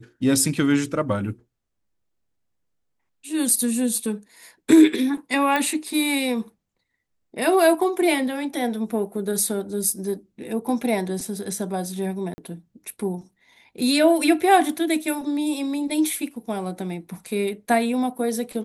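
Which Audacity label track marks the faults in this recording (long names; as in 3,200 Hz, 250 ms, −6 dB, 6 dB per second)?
5.560000	5.560000	click −10 dBFS
12.340000	12.380000	drop-out 40 ms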